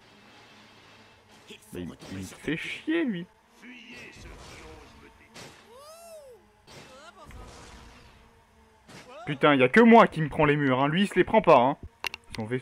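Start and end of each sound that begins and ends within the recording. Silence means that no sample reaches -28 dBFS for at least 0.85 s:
1.75–3.19 s

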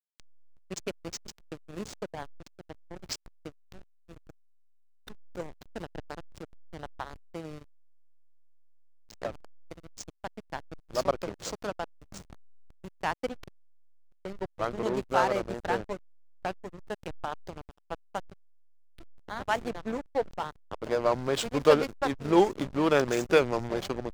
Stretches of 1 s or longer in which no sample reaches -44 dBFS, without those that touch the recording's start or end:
7.61–9.10 s

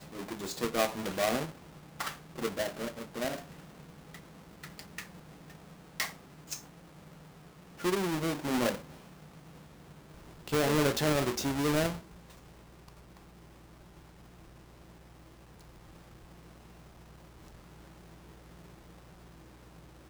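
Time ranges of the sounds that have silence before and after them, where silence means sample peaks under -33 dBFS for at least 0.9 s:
4.79–4.99 s
6.00–6.54 s
7.84–8.75 s
10.48–11.91 s

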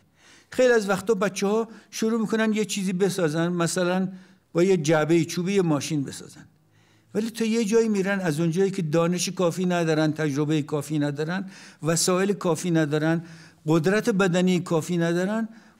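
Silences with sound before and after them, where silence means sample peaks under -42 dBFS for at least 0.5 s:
6.43–7.14 s

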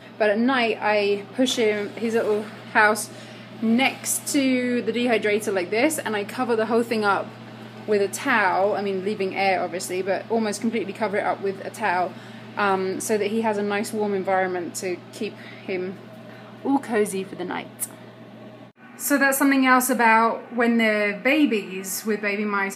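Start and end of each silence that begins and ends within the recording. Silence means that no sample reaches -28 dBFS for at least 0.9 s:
17.91–19.01 s

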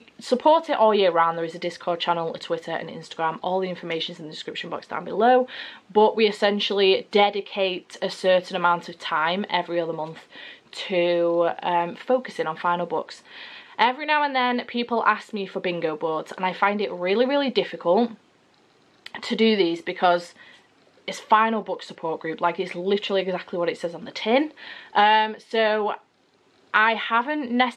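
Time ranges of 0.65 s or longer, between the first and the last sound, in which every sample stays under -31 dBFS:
18.11–19.06 s
20.26–21.08 s
25.95–26.74 s

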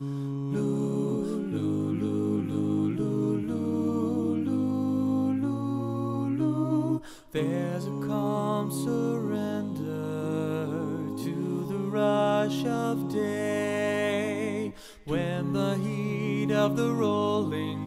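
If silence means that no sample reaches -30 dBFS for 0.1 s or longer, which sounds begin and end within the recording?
7.35–14.69 s

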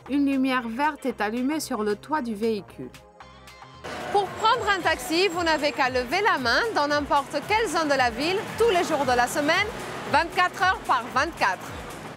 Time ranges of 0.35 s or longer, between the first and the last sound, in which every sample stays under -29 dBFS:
2.87–3.84 s

